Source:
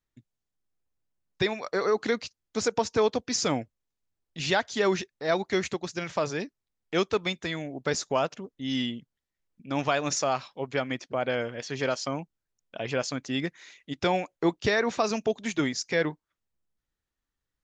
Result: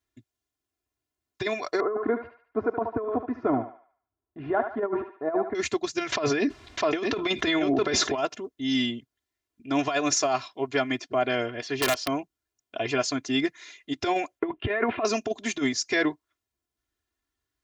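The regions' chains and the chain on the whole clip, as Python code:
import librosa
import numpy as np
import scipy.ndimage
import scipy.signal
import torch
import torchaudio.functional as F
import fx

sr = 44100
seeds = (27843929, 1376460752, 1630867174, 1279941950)

y = fx.chain(x, sr, fx.lowpass(hz=1300.0, slope=24),
    fx.echo_thinned(ms=73, feedback_pct=46, hz=630.0, wet_db=-7.5), at=(1.8, 5.55))
y = fx.chain(y, sr, fx.lowpass(hz=3800.0, slope=12),
    fx.echo_single(ms=653, db=-14.5),
    fx.env_flatten(amount_pct=70), at=(6.12, 8.18))
y = fx.chain(y, sr, fx.peak_eq(hz=6900.0, db=-9.0, octaves=0.66),
    fx.overflow_wrap(gain_db=18.0), at=(11.46, 12.09))
y = fx.chain(y, sr, fx.steep_lowpass(hz=3000.0, slope=48),
    fx.over_compress(threshold_db=-28.0, ratio=-0.5), at=(14.39, 15.05))
y = scipy.signal.sosfilt(scipy.signal.butter(2, 64.0, 'highpass', fs=sr, output='sos'), y)
y = y + 0.91 * np.pad(y, (int(2.9 * sr / 1000.0), 0))[:len(y)]
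y = fx.over_compress(y, sr, threshold_db=-23.0, ratio=-0.5)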